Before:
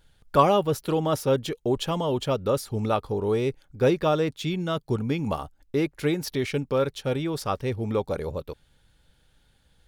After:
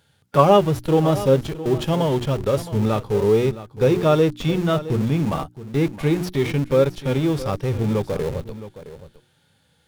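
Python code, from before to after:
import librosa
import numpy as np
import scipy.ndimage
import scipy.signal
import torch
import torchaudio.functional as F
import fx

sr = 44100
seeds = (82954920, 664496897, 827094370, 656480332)

p1 = scipy.signal.sosfilt(scipy.signal.butter(4, 93.0, 'highpass', fs=sr, output='sos'), x)
p2 = fx.hum_notches(p1, sr, base_hz=60, count=6)
p3 = fx.hpss(p2, sr, part='percussive', gain_db=-11)
p4 = fx.schmitt(p3, sr, flips_db=-35.5)
p5 = p3 + (p4 * librosa.db_to_amplitude(-11.0))
p6 = p5 + 10.0 ** (-14.5 / 20.0) * np.pad(p5, (int(666 * sr / 1000.0), 0))[:len(p5)]
y = p6 * librosa.db_to_amplitude(7.5)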